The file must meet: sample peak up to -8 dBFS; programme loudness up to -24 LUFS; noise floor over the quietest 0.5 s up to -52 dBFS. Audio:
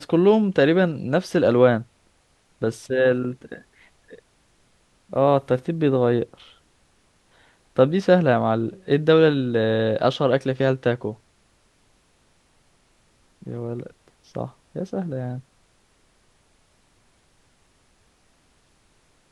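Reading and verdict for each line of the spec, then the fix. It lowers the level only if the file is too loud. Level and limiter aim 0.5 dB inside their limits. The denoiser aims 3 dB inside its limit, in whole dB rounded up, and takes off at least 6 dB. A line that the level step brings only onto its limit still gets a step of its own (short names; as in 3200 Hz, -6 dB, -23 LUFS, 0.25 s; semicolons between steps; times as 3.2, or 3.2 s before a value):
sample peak -3.0 dBFS: fail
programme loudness -21.5 LUFS: fail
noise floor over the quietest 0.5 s -62 dBFS: OK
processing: gain -3 dB; limiter -8.5 dBFS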